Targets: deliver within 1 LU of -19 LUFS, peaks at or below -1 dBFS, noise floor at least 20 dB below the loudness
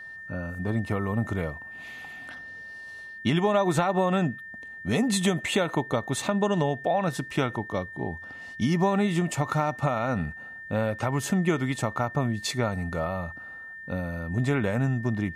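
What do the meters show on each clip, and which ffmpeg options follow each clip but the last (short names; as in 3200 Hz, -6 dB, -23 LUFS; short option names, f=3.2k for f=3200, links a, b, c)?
steady tone 1800 Hz; tone level -39 dBFS; loudness -27.5 LUFS; peak -12.5 dBFS; loudness target -19.0 LUFS
-> -af "bandreject=f=1.8k:w=30"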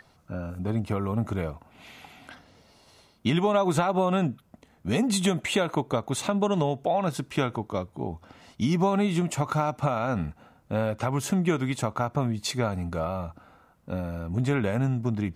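steady tone none; loudness -27.5 LUFS; peak -12.5 dBFS; loudness target -19.0 LUFS
-> -af "volume=8.5dB"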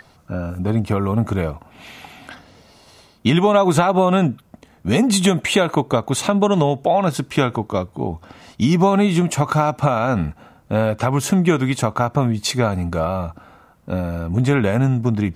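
loudness -19.0 LUFS; peak -4.0 dBFS; noise floor -52 dBFS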